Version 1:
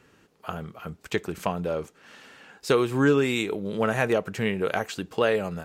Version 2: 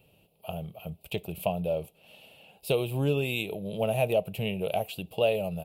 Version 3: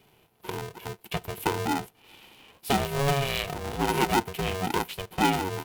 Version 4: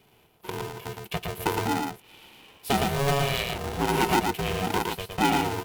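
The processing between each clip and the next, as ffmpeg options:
ffmpeg -i in.wav -af "firequalizer=gain_entry='entry(170,0);entry(250,-11);entry(430,-7);entry(630,4);entry(1100,-17);entry(1700,-28);entry(2600,2);entry(6300,-18);entry(11000,8)':delay=0.05:min_phase=1" out.wav
ffmpeg -i in.wav -af "aeval=exprs='val(0)*sgn(sin(2*PI*280*n/s))':channel_layout=same,volume=1.5dB" out.wav
ffmpeg -i in.wav -af "aecho=1:1:113:0.631" out.wav

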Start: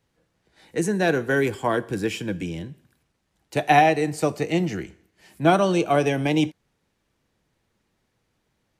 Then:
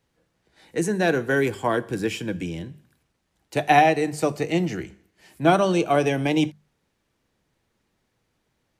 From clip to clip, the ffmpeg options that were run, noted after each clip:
ffmpeg -i in.wav -af "bandreject=frequency=50:width_type=h:width=6,bandreject=frequency=100:width_type=h:width=6,bandreject=frequency=150:width_type=h:width=6,bandreject=frequency=200:width_type=h:width=6" out.wav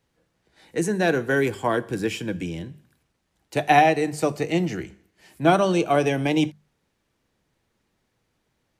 ffmpeg -i in.wav -af anull out.wav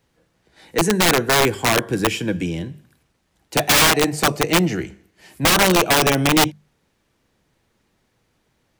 ffmpeg -i in.wav -af "aeval=exprs='(mod(5.62*val(0)+1,2)-1)/5.62':channel_layout=same,volume=6dB" out.wav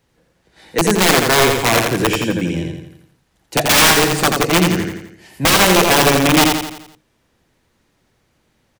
ffmpeg -i in.wav -af "aecho=1:1:85|170|255|340|425|510:0.631|0.303|0.145|0.0698|0.0335|0.0161,volume=2dB" out.wav

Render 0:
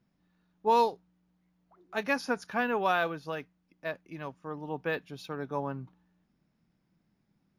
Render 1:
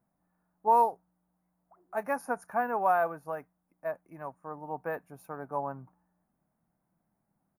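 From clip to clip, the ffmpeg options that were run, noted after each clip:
ffmpeg -i in.wav -af "firequalizer=gain_entry='entry(410,0);entry(680,11);entry(2200,-5);entry(3300,-23);entry(9300,10)':delay=0.05:min_phase=1,volume=-6dB" out.wav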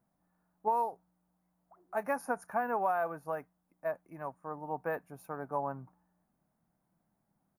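ffmpeg -i in.wav -af "acompressor=threshold=-27dB:ratio=6" out.wav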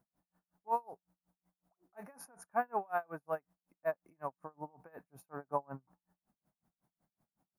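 ffmpeg -i in.wav -af "aeval=exprs='val(0)*pow(10,-34*(0.5-0.5*cos(2*PI*5.4*n/s))/20)':channel_layout=same,volume=2dB" out.wav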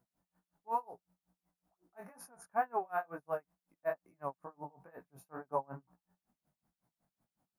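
ffmpeg -i in.wav -af "flanger=delay=16:depth=5.8:speed=2.2,volume=2.5dB" out.wav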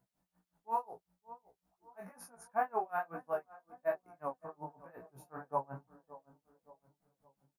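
ffmpeg -i in.wav -filter_complex "[0:a]asplit=2[link_01][link_02];[link_02]adelay=569,lowpass=frequency=1100:poles=1,volume=-16.5dB,asplit=2[link_03][link_04];[link_04]adelay=569,lowpass=frequency=1100:poles=1,volume=0.51,asplit=2[link_05][link_06];[link_06]adelay=569,lowpass=frequency=1100:poles=1,volume=0.51,asplit=2[link_07][link_08];[link_08]adelay=569,lowpass=frequency=1100:poles=1,volume=0.51,asplit=2[link_09][link_10];[link_10]adelay=569,lowpass=frequency=1100:poles=1,volume=0.51[link_11];[link_01][link_03][link_05][link_07][link_09][link_11]amix=inputs=6:normalize=0,flanger=delay=15:depth=3.7:speed=0.55,volume=3.5dB" out.wav

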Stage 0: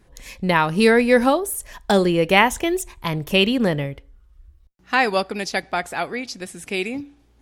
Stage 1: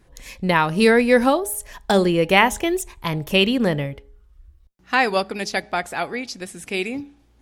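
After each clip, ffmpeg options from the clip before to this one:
ffmpeg -i in.wav -af "bandreject=frequency=208:width_type=h:width=4,bandreject=frequency=416:width_type=h:width=4,bandreject=frequency=624:width_type=h:width=4,bandreject=frequency=832:width_type=h:width=4" out.wav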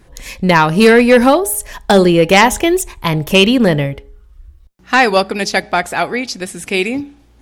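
ffmpeg -i in.wav -af "aeval=exprs='0.841*sin(PI/2*1.78*val(0)/0.841)':channel_layout=same" out.wav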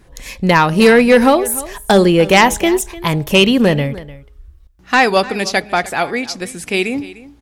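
ffmpeg -i in.wav -af "aecho=1:1:300:0.126,volume=-1dB" out.wav

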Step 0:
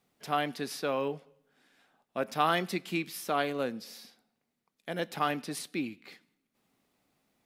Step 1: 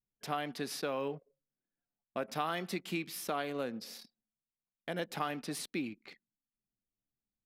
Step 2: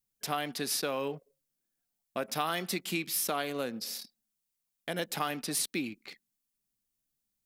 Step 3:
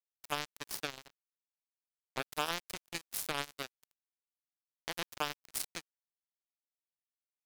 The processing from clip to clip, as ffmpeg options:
ffmpeg -i in.wav -af "deesser=0.7,anlmdn=0.00631,acompressor=threshold=-33dB:ratio=3" out.wav
ffmpeg -i in.wav -af "highshelf=frequency=4300:gain=12,volume=2dB" out.wav
ffmpeg -i in.wav -af "highpass=42,acrusher=bits=3:mix=0:aa=0.5,aeval=exprs='sgn(val(0))*max(abs(val(0))-0.00841,0)':channel_layout=same,volume=-1dB" out.wav

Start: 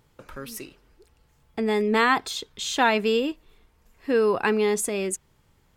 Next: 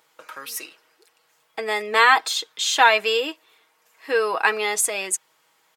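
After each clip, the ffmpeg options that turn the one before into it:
ffmpeg -i in.wav -af "highpass=720,aecho=1:1:6.3:0.52,volume=6dB" out.wav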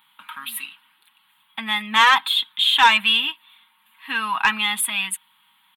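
ffmpeg -i in.wav -af "firequalizer=gain_entry='entry(140,0);entry(230,13);entry(350,-22);entry(500,-27);entry(920,7);entry(1300,3);entry(2100,4);entry(3400,13);entry(5600,-28);entry(9600,4)':delay=0.05:min_phase=1,aeval=exprs='1.26*(cos(1*acos(clip(val(0)/1.26,-1,1)))-cos(1*PI/2))+0.112*(cos(5*acos(clip(val(0)/1.26,-1,1)))-cos(5*PI/2))':channel_layout=same,volume=-5dB" out.wav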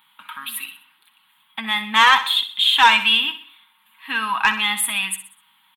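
ffmpeg -i in.wav -af "aecho=1:1:63|126|189|252:0.251|0.111|0.0486|0.0214,volume=1dB" out.wav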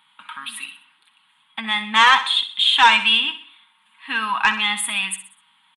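ffmpeg -i in.wav -af "aresample=22050,aresample=44100" out.wav

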